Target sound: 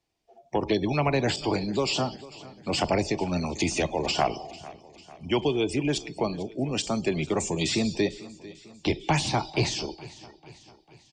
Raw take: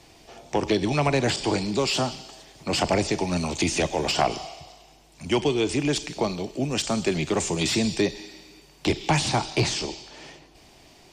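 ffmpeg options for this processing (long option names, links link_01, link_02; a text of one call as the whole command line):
ffmpeg -i in.wav -filter_complex "[0:a]afftdn=noise_reduction=26:noise_floor=-35,asplit=2[link_01][link_02];[link_02]aecho=0:1:447|894|1341|1788:0.112|0.0595|0.0315|0.0167[link_03];[link_01][link_03]amix=inputs=2:normalize=0,volume=-2dB" out.wav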